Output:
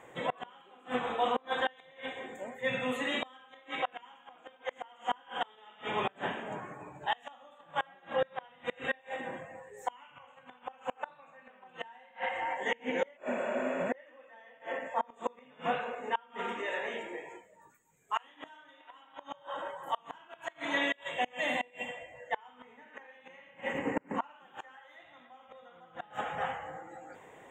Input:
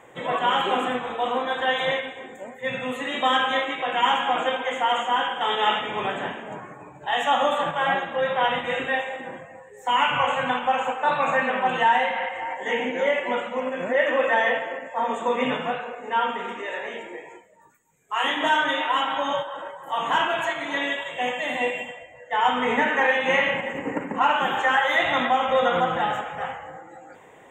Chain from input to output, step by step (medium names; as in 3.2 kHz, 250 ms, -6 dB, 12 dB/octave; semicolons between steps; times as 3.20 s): spectral replace 13.19–13.82 s, 350–7700 Hz after; inverted gate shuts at -15 dBFS, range -30 dB; trim -4 dB